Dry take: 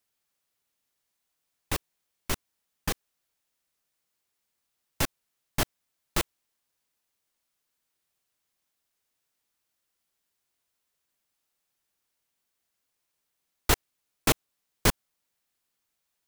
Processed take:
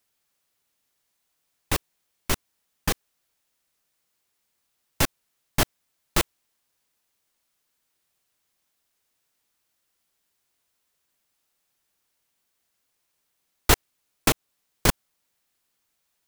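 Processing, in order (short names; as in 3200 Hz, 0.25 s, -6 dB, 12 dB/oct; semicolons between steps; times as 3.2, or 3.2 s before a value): 14.28–14.89 compressor 3:1, threshold -24 dBFS, peak gain reduction 6 dB; gain +5 dB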